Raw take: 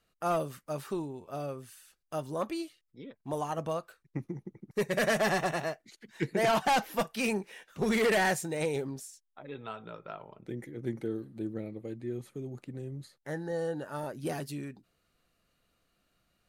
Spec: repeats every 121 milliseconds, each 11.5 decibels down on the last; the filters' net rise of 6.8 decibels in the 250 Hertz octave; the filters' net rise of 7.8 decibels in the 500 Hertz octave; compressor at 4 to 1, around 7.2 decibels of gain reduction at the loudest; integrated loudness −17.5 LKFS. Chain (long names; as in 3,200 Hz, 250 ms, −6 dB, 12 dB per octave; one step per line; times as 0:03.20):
parametric band 250 Hz +6.5 dB
parametric band 500 Hz +8 dB
downward compressor 4 to 1, threshold −25 dBFS
repeating echo 121 ms, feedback 27%, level −11.5 dB
level +14 dB